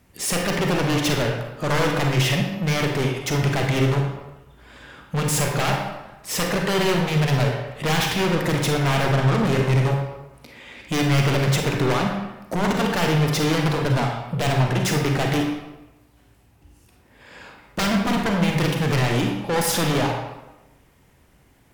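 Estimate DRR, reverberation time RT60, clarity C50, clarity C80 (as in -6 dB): 1.5 dB, 1.0 s, 3.5 dB, 6.0 dB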